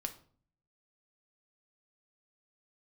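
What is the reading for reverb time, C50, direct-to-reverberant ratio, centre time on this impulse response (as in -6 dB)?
0.50 s, 13.5 dB, 5.5 dB, 7 ms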